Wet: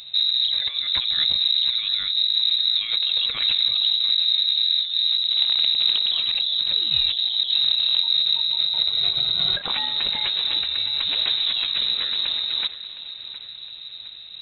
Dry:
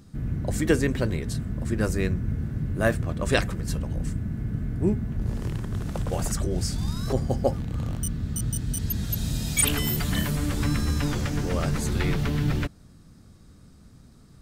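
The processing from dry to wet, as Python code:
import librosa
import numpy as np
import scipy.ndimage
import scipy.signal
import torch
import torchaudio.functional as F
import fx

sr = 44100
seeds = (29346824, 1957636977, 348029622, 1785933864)

y = fx.over_compress(x, sr, threshold_db=-30.0, ratio=-1.0)
y = fx.echo_feedback(y, sr, ms=713, feedback_pct=50, wet_db=-15)
y = fx.freq_invert(y, sr, carrier_hz=3900)
y = y * 10.0 ** (6.5 / 20.0)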